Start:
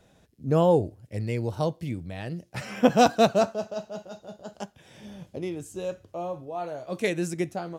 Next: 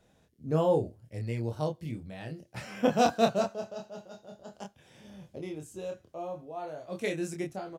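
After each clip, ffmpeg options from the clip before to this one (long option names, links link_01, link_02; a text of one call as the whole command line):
ffmpeg -i in.wav -filter_complex "[0:a]asplit=2[link_01][link_02];[link_02]adelay=26,volume=-4dB[link_03];[link_01][link_03]amix=inputs=2:normalize=0,volume=-7dB" out.wav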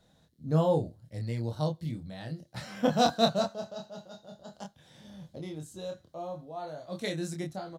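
ffmpeg -i in.wav -af "equalizer=frequency=160:width_type=o:width=0.33:gain=5,equalizer=frequency=400:width_type=o:width=0.33:gain=-7,equalizer=frequency=2500:width_type=o:width=0.33:gain=-8,equalizer=frequency=4000:width_type=o:width=0.33:gain=10" out.wav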